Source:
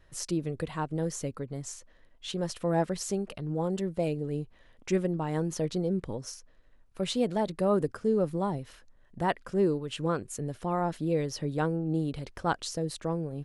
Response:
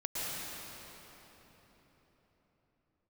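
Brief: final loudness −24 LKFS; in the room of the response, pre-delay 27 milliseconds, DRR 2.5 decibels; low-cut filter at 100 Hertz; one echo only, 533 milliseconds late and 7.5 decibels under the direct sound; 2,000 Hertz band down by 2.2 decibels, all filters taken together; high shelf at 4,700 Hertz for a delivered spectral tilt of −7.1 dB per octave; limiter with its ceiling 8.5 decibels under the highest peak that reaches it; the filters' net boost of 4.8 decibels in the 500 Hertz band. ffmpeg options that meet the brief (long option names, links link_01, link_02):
-filter_complex "[0:a]highpass=100,equalizer=frequency=500:width_type=o:gain=6,equalizer=frequency=2000:width_type=o:gain=-3,highshelf=frequency=4700:gain=-3,alimiter=limit=-20.5dB:level=0:latency=1,aecho=1:1:533:0.422,asplit=2[link_01][link_02];[1:a]atrim=start_sample=2205,adelay=27[link_03];[link_02][link_03]afir=irnorm=-1:irlink=0,volume=-8dB[link_04];[link_01][link_04]amix=inputs=2:normalize=0,volume=4.5dB"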